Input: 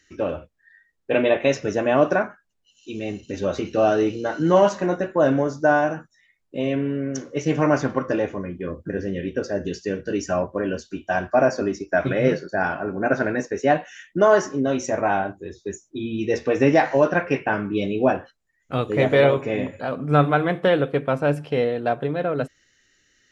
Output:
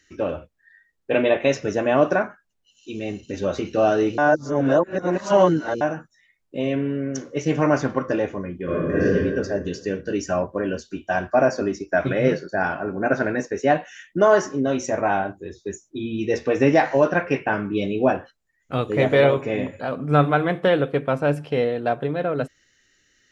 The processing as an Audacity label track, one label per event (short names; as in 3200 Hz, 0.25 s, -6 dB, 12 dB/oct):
4.180000	5.810000	reverse
8.640000	9.040000	reverb throw, RT60 1.8 s, DRR -10 dB